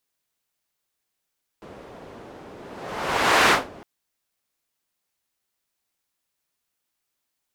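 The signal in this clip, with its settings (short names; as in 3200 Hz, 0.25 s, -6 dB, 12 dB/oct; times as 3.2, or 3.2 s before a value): whoosh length 2.21 s, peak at 1.88, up 1.00 s, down 0.21 s, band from 440 Hz, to 1400 Hz, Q 0.8, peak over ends 26 dB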